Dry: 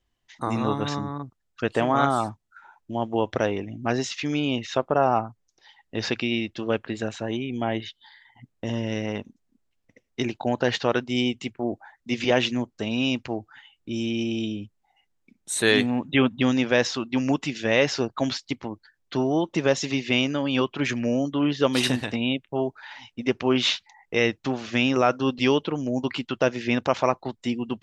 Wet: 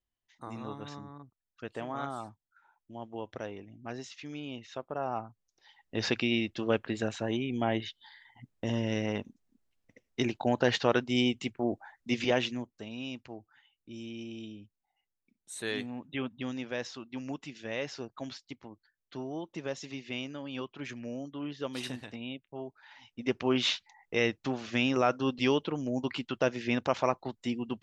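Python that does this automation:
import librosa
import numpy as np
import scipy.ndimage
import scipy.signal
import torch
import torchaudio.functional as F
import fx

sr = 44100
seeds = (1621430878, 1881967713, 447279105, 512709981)

y = fx.gain(x, sr, db=fx.line((4.86, -15.5), (6.06, -3.0), (12.1, -3.0), (12.91, -15.0), (22.78, -15.0), (23.32, -6.0)))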